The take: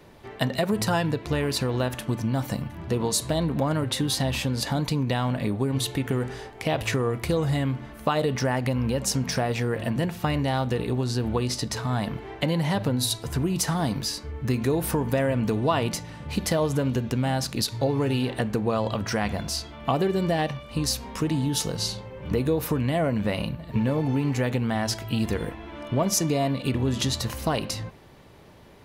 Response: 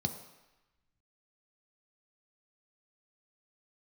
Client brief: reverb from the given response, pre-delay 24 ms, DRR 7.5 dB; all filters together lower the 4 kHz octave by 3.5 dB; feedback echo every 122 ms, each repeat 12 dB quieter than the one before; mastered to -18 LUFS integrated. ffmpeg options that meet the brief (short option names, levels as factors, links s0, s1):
-filter_complex "[0:a]equalizer=f=4000:t=o:g=-4.5,aecho=1:1:122|244|366:0.251|0.0628|0.0157,asplit=2[s0][s1];[1:a]atrim=start_sample=2205,adelay=24[s2];[s1][s2]afir=irnorm=-1:irlink=0,volume=0.299[s3];[s0][s3]amix=inputs=2:normalize=0,volume=1.78"